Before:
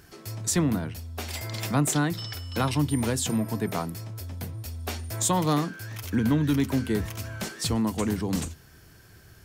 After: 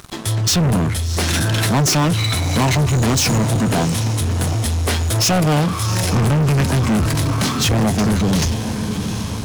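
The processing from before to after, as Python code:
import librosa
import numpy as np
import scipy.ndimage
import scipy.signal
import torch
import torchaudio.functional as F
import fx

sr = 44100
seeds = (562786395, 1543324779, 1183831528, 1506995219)

y = fx.echo_diffused(x, sr, ms=749, feedback_pct=53, wet_db=-14)
y = fx.formant_shift(y, sr, semitones=-5)
y = fx.leveller(y, sr, passes=5)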